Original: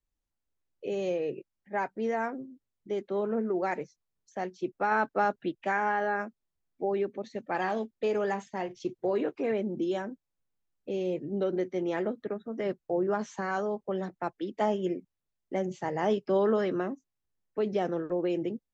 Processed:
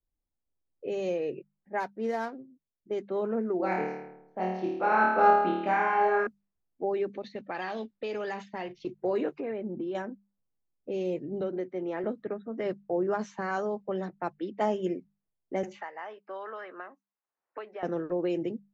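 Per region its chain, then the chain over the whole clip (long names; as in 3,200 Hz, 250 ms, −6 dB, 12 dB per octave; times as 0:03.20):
0:01.80–0:02.91: running median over 15 samples + expander for the loud parts, over −43 dBFS
0:03.57–0:06.27: Chebyshev low-pass filter 3,400 Hz + parametric band 1,800 Hz −7 dB 0.3 octaves + flutter between parallel walls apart 4.6 metres, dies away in 0.92 s
0:07.13–0:08.87: parametric band 4,200 Hz +12 dB 1.7 octaves + downward compressor, threshold −30 dBFS
0:09.40–0:09.95: Gaussian smoothing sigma 2.2 samples + downward compressor 2.5 to 1, threshold −32 dBFS
0:11.41–0:12.04: low-pass filter 1,000 Hz 6 dB per octave + spectral tilt +2 dB per octave + multiband upward and downward compressor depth 40%
0:15.63–0:17.83: high-pass filter 1,200 Hz + high-shelf EQ 3,200 Hz −4.5 dB + multiband upward and downward compressor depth 100%
whole clip: notch filter 3,300 Hz, Q 17; low-pass that shuts in the quiet parts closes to 790 Hz, open at −25.5 dBFS; mains-hum notches 50/100/150/200 Hz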